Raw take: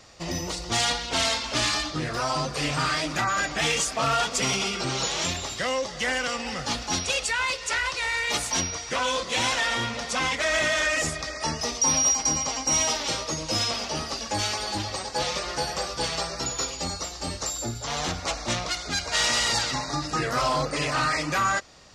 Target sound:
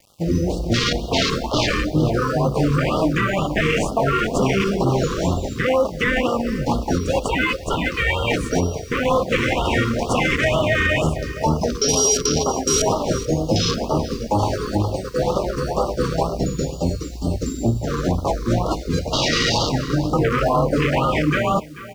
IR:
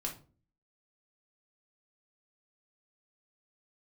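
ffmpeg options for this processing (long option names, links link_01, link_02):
-filter_complex "[0:a]asettb=1/sr,asplit=3[link_01][link_02][link_03];[link_01]atrim=end=9.654[link_04];[link_02]atrim=start=9.65:end=10.55,asetpts=PTS-STARTPTS,afade=type=in:duration=0.004:curve=qsin,afade=type=out:start_time=0.896:duration=0.004:curve=qsin,highshelf=frequency=4700:gain=10[link_05];[link_03]atrim=start=10.546[link_06];[link_04][link_05]acrossfade=duration=0.004:curve1=hsin:curve2=qsin[link_07];[link_07][link_06]acrossfade=duration=0.004:curve1=qsin:curve2=hsin,asplit=2[link_08][link_09];[link_09]acrusher=samples=25:mix=1:aa=0.000001,volume=-4dB[link_10];[link_08][link_10]amix=inputs=2:normalize=0,afwtdn=0.0501,aecho=1:1:435:0.0944,acrusher=bits=9:mix=0:aa=0.000001,asettb=1/sr,asplit=3[link_11][link_12][link_13];[link_11]atrim=end=18.094[link_14];[link_12]atrim=start=18.09:end=18.53,asetpts=PTS-STARTPTS,afade=type=in:duration=0.004:curve=qsin,afade=type=out:start_time=0.436:duration=0.004:curve=qsin,bandreject=frequency=2800:width=12[link_15];[link_13]atrim=start=18.526[link_16];[link_14][link_15]acrossfade=duration=0.004:curve1=hsin:curve2=qsin[link_17];[link_17][link_16]acrossfade=duration=0.004:curve1=qsin:curve2=hsin,alimiter=level_in=17dB:limit=-1dB:release=50:level=0:latency=1,afftfilt=real='re*(1-between(b*sr/1024,700*pow(2000/700,0.5+0.5*sin(2*PI*2.1*pts/sr))/1.41,700*pow(2000/700,0.5+0.5*sin(2*PI*2.1*pts/sr))*1.41))':imag='im*(1-between(b*sr/1024,700*pow(2000/700,0.5+0.5*sin(2*PI*2.1*pts/sr))/1.41,700*pow(2000/700,0.5+0.5*sin(2*PI*2.1*pts/sr))*1.41))':win_size=1024:overlap=0.75,volume=-7.5dB"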